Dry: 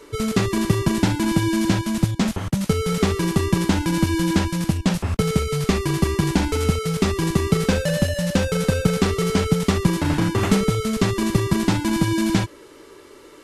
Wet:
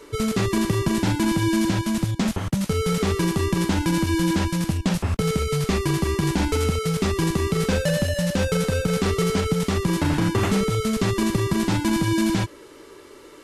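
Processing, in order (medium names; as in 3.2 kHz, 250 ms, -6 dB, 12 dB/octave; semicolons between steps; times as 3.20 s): peak limiter -11.5 dBFS, peak gain reduction 7 dB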